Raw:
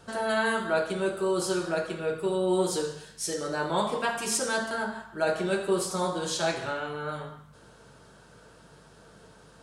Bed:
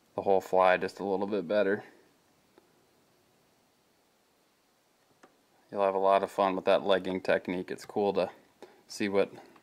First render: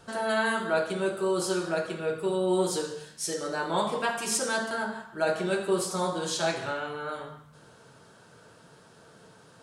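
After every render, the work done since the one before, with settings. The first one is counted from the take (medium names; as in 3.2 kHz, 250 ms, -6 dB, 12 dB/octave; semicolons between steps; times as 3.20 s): de-hum 50 Hz, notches 12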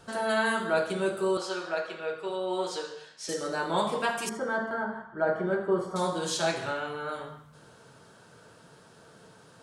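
1.37–3.29 s: three-band isolator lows -15 dB, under 450 Hz, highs -21 dB, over 6 kHz; 4.29–5.96 s: Savitzky-Golay filter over 41 samples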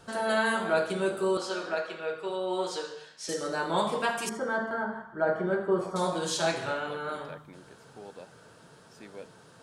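add bed -18 dB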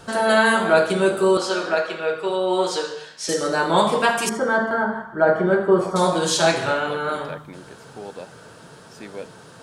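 trim +10 dB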